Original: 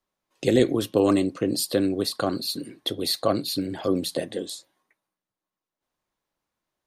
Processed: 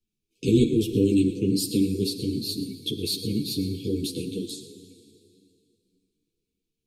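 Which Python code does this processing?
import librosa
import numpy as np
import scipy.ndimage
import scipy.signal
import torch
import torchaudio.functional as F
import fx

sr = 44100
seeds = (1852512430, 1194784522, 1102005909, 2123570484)

p1 = fx.brickwall_bandstop(x, sr, low_hz=490.0, high_hz=2200.0)
p2 = fx.bass_treble(p1, sr, bass_db=10, treble_db=1)
p3 = p2 + fx.echo_single(p2, sr, ms=115, db=-15.0, dry=0)
p4 = fx.rev_plate(p3, sr, seeds[0], rt60_s=2.7, hf_ratio=0.9, predelay_ms=0, drr_db=10.0)
y = fx.ensemble(p4, sr)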